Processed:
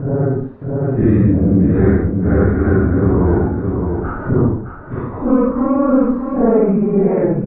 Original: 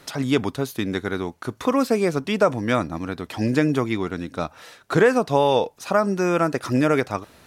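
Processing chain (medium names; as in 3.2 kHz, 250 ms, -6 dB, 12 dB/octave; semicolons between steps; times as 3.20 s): partial rectifier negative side -7 dB; high-pass 73 Hz 6 dB/octave; doubling 20 ms -13 dB; Paulstretch 4.8×, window 0.05 s, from 0.57 s; low-pass 1.6 kHz 24 dB/octave; tilt EQ -3.5 dB/octave; on a send: feedback delay 615 ms, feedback 27%, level -8 dB; on the sum: level rider; in parallel at 0 dB: peak limiter -9 dBFS, peak gain reduction 8 dB; on the sum: trim -4.5 dB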